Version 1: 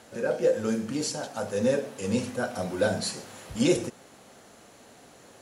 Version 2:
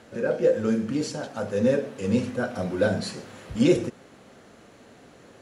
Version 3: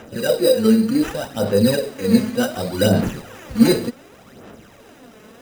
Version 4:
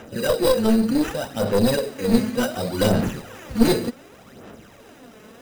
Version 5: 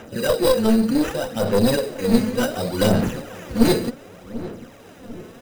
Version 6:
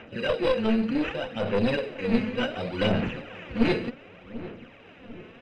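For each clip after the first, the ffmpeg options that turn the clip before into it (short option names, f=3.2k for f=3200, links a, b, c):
-af "lowpass=f=2.1k:p=1,equalizer=f=810:w=1.5:g=-5.5,volume=4.5dB"
-af "acrusher=samples=10:mix=1:aa=0.000001,aphaser=in_gain=1:out_gain=1:delay=4.7:decay=0.55:speed=0.67:type=sinusoidal,volume=4.5dB"
-af "aeval=exprs='clip(val(0),-1,0.133)':c=same,volume=-1dB"
-filter_complex "[0:a]asplit=2[a][b];[b]adelay=743,lowpass=f=920:p=1,volume=-14.5dB,asplit=2[c][d];[d]adelay=743,lowpass=f=920:p=1,volume=0.53,asplit=2[e][f];[f]adelay=743,lowpass=f=920:p=1,volume=0.53,asplit=2[g][h];[h]adelay=743,lowpass=f=920:p=1,volume=0.53,asplit=2[i][j];[j]adelay=743,lowpass=f=920:p=1,volume=0.53[k];[a][c][e][g][i][k]amix=inputs=6:normalize=0,volume=1dB"
-af "lowpass=f=2.6k:t=q:w=3.4,volume=-7dB"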